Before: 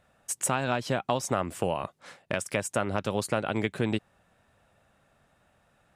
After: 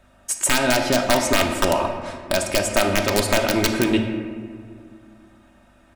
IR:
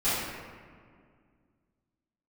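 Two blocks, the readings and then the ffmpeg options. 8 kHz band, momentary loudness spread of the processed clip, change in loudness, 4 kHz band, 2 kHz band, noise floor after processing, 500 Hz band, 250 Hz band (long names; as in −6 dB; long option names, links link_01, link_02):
+10.5 dB, 12 LU, +9.5 dB, +15.0 dB, +11.5 dB, −54 dBFS, +9.5 dB, +10.0 dB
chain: -filter_complex "[0:a]aeval=exprs='(mod(5.62*val(0)+1,2)-1)/5.62':channel_layout=same,aeval=exprs='val(0)+0.000794*(sin(2*PI*50*n/s)+sin(2*PI*2*50*n/s)/2+sin(2*PI*3*50*n/s)/3+sin(2*PI*4*50*n/s)/4+sin(2*PI*5*50*n/s)/5)':channel_layout=same,aecho=1:1:3.2:0.64,asplit=2[link_01][link_02];[1:a]atrim=start_sample=2205,lowpass=8700[link_03];[link_02][link_03]afir=irnorm=-1:irlink=0,volume=-14.5dB[link_04];[link_01][link_04]amix=inputs=2:normalize=0,volume=6dB"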